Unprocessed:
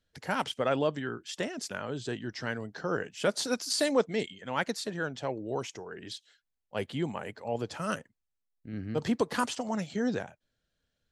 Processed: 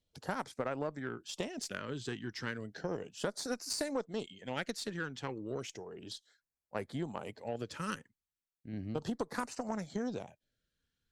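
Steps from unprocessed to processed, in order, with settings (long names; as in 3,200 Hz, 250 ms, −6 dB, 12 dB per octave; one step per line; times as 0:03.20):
auto-filter notch sine 0.34 Hz 610–3,300 Hz
downward compressor 6 to 1, threshold −32 dBFS, peak gain reduction 11.5 dB
harmonic generator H 4 −27 dB, 7 −27 dB, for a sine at −19 dBFS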